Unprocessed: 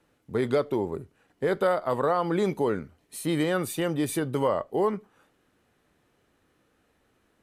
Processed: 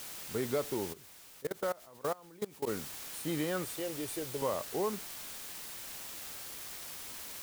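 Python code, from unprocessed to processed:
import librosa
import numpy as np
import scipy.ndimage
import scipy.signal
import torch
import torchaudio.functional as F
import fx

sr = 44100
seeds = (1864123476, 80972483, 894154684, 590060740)

y = fx.fixed_phaser(x, sr, hz=500.0, stages=4, at=(3.64, 4.42))
y = fx.quant_dither(y, sr, seeds[0], bits=6, dither='triangular')
y = fx.level_steps(y, sr, step_db=23, at=(0.92, 2.66), fade=0.02)
y = y * 10.0 ** (-8.5 / 20.0)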